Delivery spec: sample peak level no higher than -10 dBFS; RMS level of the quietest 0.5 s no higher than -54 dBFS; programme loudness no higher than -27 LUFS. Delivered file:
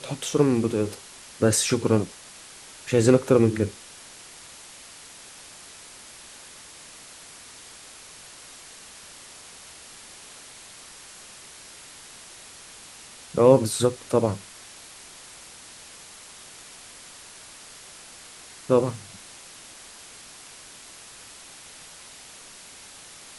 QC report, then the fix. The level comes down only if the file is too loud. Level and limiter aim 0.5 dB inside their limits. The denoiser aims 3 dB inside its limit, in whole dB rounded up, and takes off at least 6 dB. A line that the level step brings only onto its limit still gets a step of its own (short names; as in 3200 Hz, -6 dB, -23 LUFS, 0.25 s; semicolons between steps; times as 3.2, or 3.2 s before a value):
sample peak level -2.5 dBFS: fail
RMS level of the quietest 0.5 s -46 dBFS: fail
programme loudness -22.5 LUFS: fail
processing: denoiser 6 dB, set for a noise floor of -46 dBFS; gain -5 dB; limiter -10.5 dBFS